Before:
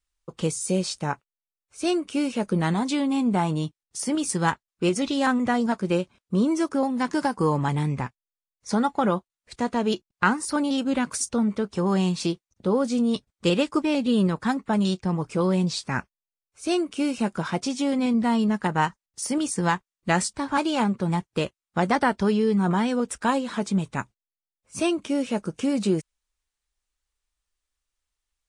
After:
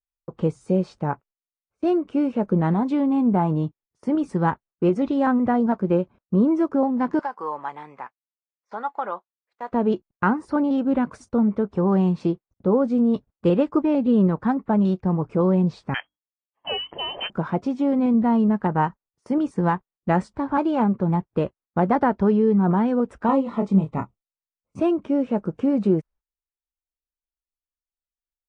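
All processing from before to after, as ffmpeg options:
ffmpeg -i in.wav -filter_complex "[0:a]asettb=1/sr,asplit=3[link_01][link_02][link_03];[link_01]atrim=end=7.194[link_04];[link_02]atrim=start=7.19:end=9.72,asetpts=PTS-STARTPTS,afade=type=in:duration=0.004:curve=qsin,afade=type=out:start_time=2.526:duration=0.004:curve=qsin,highpass=920,acrossover=split=7600[link_05][link_06];[link_06]acompressor=threshold=-55dB:ratio=4:attack=1:release=60[link_07];[link_05][link_07]amix=inputs=2:normalize=0[link_08];[link_03]atrim=start=9.716[link_09];[link_04][link_08]acrossfade=duration=0.004:curve1=hsin:curve2=qsin[link_10];[link_10][link_09]acrossfade=duration=0.004:curve1=qsin:curve2=hsin,asettb=1/sr,asplit=3[link_11][link_12][link_13];[link_11]atrim=end=15.944[link_14];[link_12]atrim=start=15.94:end=17.3,asetpts=PTS-STARTPTS,afade=type=in:duration=0.004:curve=qsin,afade=type=out:start_time=1.356:duration=0.004:curve=qsin,lowpass=frequency=2800:width_type=q:width=0.5098,lowpass=frequency=2800:width_type=q:width=0.6013,lowpass=frequency=2800:width_type=q:width=0.9,lowpass=frequency=2800:width_type=q:width=2.563,afreqshift=-3300,acontrast=54,bandreject=frequency=50:width_type=h:width=6,bandreject=frequency=100:width_type=h:width=6,bandreject=frequency=150:width_type=h:width=6,bandreject=frequency=200:width_type=h:width=6,bandreject=frequency=250:width_type=h:width=6,bandreject=frequency=300:width_type=h:width=6[link_15];[link_13]atrim=start=17.296[link_16];[link_14][link_15]acrossfade=duration=0.004:curve1=hsin:curve2=qsin[link_17];[link_17][link_16]acrossfade=duration=0.004:curve1=qsin:curve2=hsin,asettb=1/sr,asplit=3[link_18][link_19][link_20];[link_18]atrim=end=23.264[link_21];[link_19]atrim=start=23.26:end=24.8,asetpts=PTS-STARTPTS,afade=type=in:duration=0.004:curve=qsin,afade=type=out:start_time=1.536:duration=0.004:curve=qsin,asuperstop=centerf=1600:order=8:qfactor=4.8,asplit=2[link_22][link_23];[link_23]adelay=26,volume=-6dB[link_24];[link_22][link_24]amix=inputs=2:normalize=0,atrim=end_sample=67914[link_25];[link_20]atrim=start=24.796[link_26];[link_21][link_25]acrossfade=duration=0.004:curve1=hsin:curve2=qsin[link_27];[link_27][link_26]acrossfade=duration=0.004:curve1=qsin:curve2=hsin,lowpass=1000,aemphasis=mode=production:type=50kf,agate=range=-19dB:threshold=-52dB:ratio=16:detection=peak,volume=3.5dB" out.wav

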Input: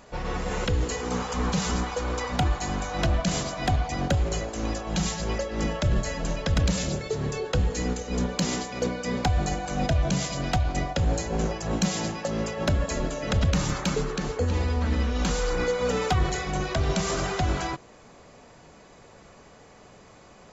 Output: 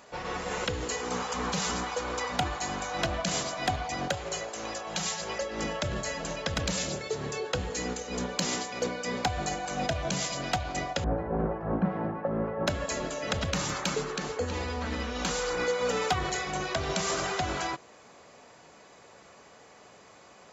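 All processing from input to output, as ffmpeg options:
ffmpeg -i in.wav -filter_complex "[0:a]asettb=1/sr,asplit=3[link_01][link_02][link_03];[link_01]atrim=end=4.094[link_04];[link_02]atrim=start=4.09:end=5.41,asetpts=PTS-STARTPTS,afade=type=in:duration=0.004:curve=qsin,afade=type=out:start_time=1.316:duration=0.004:curve=qsin,highpass=frequency=160:poles=1,equalizer=frequency=270:width=2.3:gain=-8.5[link_05];[link_03]atrim=start=5.406[link_06];[link_04][link_05]acrossfade=duration=0.004:curve1=hsin:curve2=qsin[link_07];[link_07][link_06]acrossfade=duration=0.004:curve1=qsin:curve2=hsin,asettb=1/sr,asplit=3[link_08][link_09][link_10];[link_08]atrim=end=11.044[link_11];[link_09]atrim=start=11.04:end=12.67,asetpts=PTS-STARTPTS,afade=type=in:duration=0.004:curve=qsin,afade=type=out:start_time=1.626:duration=0.004:curve=qsin,lowpass=frequency=1500:width=0.5412,lowpass=frequency=1500:width=1.3066,lowshelf=frequency=360:gain=7[link_12];[link_10]atrim=start=12.666[link_13];[link_11][link_12]acrossfade=duration=0.004:curve1=hsin:curve2=qsin[link_14];[link_14][link_13]acrossfade=duration=0.004:curve1=qsin:curve2=hsin,highpass=57,lowshelf=frequency=270:gain=-11.5" out.wav

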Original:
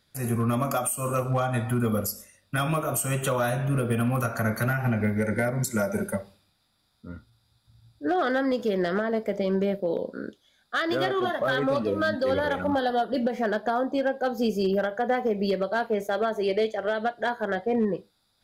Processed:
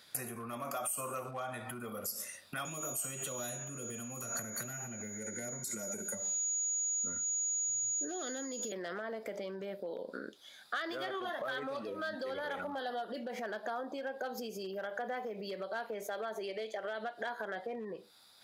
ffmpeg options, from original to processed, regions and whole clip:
ffmpeg -i in.wav -filter_complex "[0:a]asettb=1/sr,asplit=3[link_01][link_02][link_03];[link_01]atrim=end=2.654[link_04];[link_02]atrim=start=2.65:end=8.72,asetpts=PTS-STARTPTS,afade=type=in:duration=0.004:curve=qsin,afade=type=out:start_time=6.066:duration=0.004:curve=qsin,acrossover=split=430|3000[link_05][link_06][link_07];[link_06]acompressor=threshold=-42dB:ratio=4:attack=3.2:release=140:knee=2.83:detection=peak[link_08];[link_05][link_08][link_07]amix=inputs=3:normalize=0,aeval=exprs='val(0)+0.0158*sin(2*PI*6800*n/s)':channel_layout=same[link_09];[link_03]atrim=start=8.716[link_10];[link_04][link_09]acrossfade=duration=0.004:curve1=hsin:curve2=qsin[link_11];[link_11][link_10]acrossfade=duration=0.004:curve1=qsin:curve2=hsin,alimiter=level_in=2.5dB:limit=-24dB:level=0:latency=1:release=108,volume=-2.5dB,acompressor=threshold=-43dB:ratio=6,highpass=frequency=660:poles=1,volume=10dB" out.wav

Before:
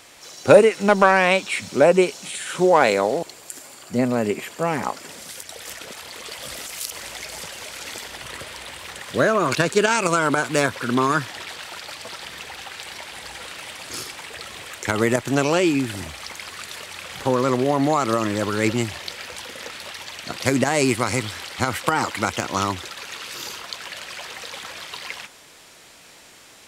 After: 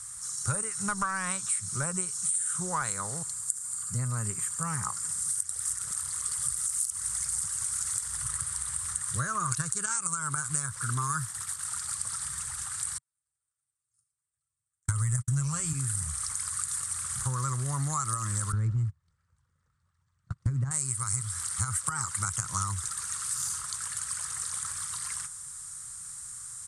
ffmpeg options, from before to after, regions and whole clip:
ffmpeg -i in.wav -filter_complex "[0:a]asettb=1/sr,asplit=3[link_01][link_02][link_03];[link_01]atrim=end=10.984[link_04];[link_02]atrim=start=10.98:end=11.65,asetpts=PTS-STARTPTS,afade=type=in:duration=0.004:curve=qsin,afade=type=out:start_time=0.666:duration=0.004:curve=qsin,equalizer=frequency=12000:width=3.1:gain=7.5,agate=range=-33dB:threshold=-33dB:ratio=3:release=100:detection=peak[link_05];[link_03]atrim=start=11.646[link_06];[link_04][link_05]acrossfade=duration=0.004:curve1=hsin:curve2=qsin[link_07];[link_07][link_06]acrossfade=duration=0.004:curve1=qsin:curve2=hsin,asettb=1/sr,asplit=3[link_08][link_09][link_10];[link_08]atrim=end=12.984[link_11];[link_09]atrim=start=12.98:end=15.73,asetpts=PTS-STARTPTS,afade=type=in:duration=0.004:curve=qsin,afade=type=out:start_time=2.746:duration=0.004:curve=qsin,asubboost=boost=6:cutoff=150,aecho=1:1:7.5:0.54,atrim=end_sample=121275,agate=range=-55dB:threshold=-24dB:ratio=16:release=100:detection=peak[link_12];[link_10]atrim=start=15.726[link_13];[link_11][link_12]acrossfade=duration=0.004:curve1=hsin:curve2=qsin[link_14];[link_14][link_13]acrossfade=duration=0.004:curve1=qsin:curve2=hsin,asettb=1/sr,asplit=3[link_15][link_16][link_17];[link_15]atrim=end=18.524[link_18];[link_16]atrim=start=18.52:end=20.71,asetpts=PTS-STARTPTS,afade=type=in:duration=0.004:curve=qsin,afade=type=out:start_time=2.186:duration=0.004:curve=qsin,lowpass=3600,agate=range=-30dB:threshold=-30dB:ratio=16:release=100:detection=peak,tiltshelf=frequency=660:gain=9[link_19];[link_17]atrim=start=20.706[link_20];[link_18][link_19]acrossfade=duration=0.004:curve1=hsin:curve2=qsin[link_21];[link_21][link_20]acrossfade=duration=0.004:curve1=qsin:curve2=hsin,firequalizer=gain_entry='entry(130,0);entry(250,-27);entry(660,-29);entry(1200,-6);entry(2500,-25);entry(8900,14);entry(14000,-20)':delay=0.05:min_phase=1,acompressor=threshold=-32dB:ratio=5,volume=5dB" out.wav

